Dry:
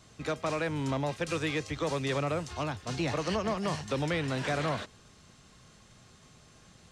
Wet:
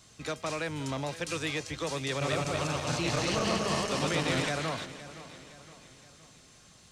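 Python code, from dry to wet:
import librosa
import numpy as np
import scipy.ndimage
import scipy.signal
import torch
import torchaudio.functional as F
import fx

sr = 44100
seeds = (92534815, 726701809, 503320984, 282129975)

y = fx.reverse_delay_fb(x, sr, ms=119, feedback_pct=72, wet_db=0.0, at=(2.09, 4.49))
y = fx.high_shelf(y, sr, hz=2800.0, db=9.0)
y = fx.echo_feedback(y, sr, ms=517, feedback_pct=47, wet_db=-15.5)
y = F.gain(torch.from_numpy(y), -3.5).numpy()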